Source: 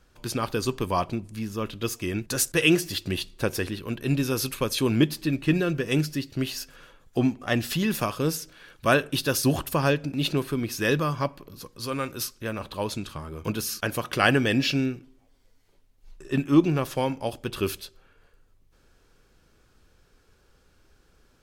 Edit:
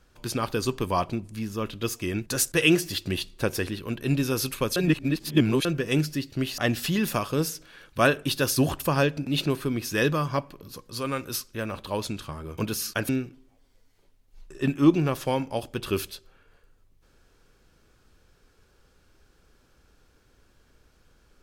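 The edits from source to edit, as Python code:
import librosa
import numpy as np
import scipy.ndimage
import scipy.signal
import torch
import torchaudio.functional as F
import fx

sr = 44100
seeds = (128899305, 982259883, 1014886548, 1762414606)

y = fx.edit(x, sr, fx.reverse_span(start_s=4.76, length_s=0.89),
    fx.cut(start_s=6.58, length_s=0.87),
    fx.cut(start_s=13.96, length_s=0.83), tone=tone)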